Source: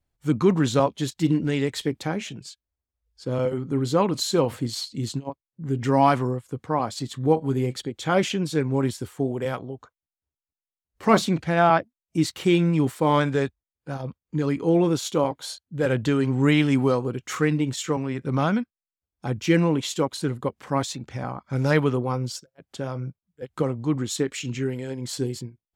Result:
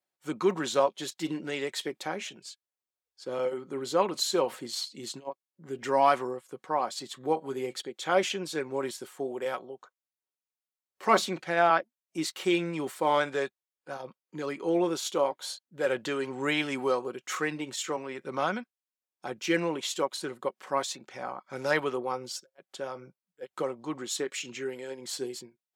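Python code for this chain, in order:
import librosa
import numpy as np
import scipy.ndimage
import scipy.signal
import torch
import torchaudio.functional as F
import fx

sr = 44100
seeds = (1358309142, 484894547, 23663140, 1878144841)

y = scipy.signal.sosfilt(scipy.signal.butter(2, 420.0, 'highpass', fs=sr, output='sos'), x)
y = y + 0.33 * np.pad(y, (int(5.4 * sr / 1000.0), 0))[:len(y)]
y = y * librosa.db_to_amplitude(-3.0)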